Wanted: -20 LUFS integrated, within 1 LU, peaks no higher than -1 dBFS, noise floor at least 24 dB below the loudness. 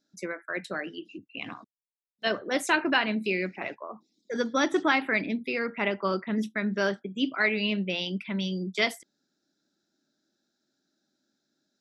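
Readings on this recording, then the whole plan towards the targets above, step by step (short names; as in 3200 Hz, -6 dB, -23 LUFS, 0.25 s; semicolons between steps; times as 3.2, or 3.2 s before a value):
loudness -28.5 LUFS; peak -8.5 dBFS; loudness target -20.0 LUFS
-> gain +8.5 dB; limiter -1 dBFS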